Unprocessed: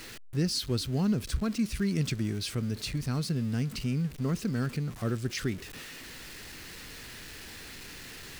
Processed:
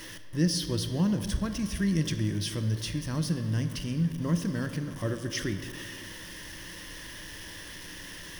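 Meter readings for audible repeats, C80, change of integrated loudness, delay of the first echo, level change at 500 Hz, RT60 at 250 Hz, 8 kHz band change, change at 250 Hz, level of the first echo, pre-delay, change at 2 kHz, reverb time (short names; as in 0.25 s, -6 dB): none, 10.0 dB, 0.0 dB, none, 0.0 dB, 2.3 s, +2.5 dB, +1.0 dB, none, 20 ms, +2.0 dB, 2.1 s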